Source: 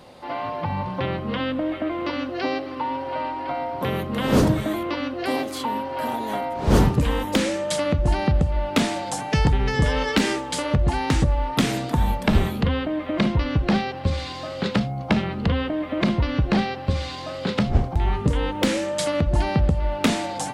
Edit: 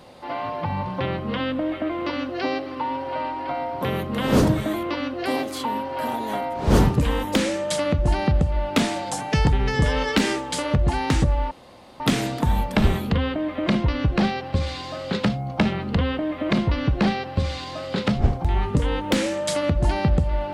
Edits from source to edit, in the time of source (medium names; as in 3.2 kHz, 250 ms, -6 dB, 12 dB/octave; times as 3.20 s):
11.51 s: insert room tone 0.49 s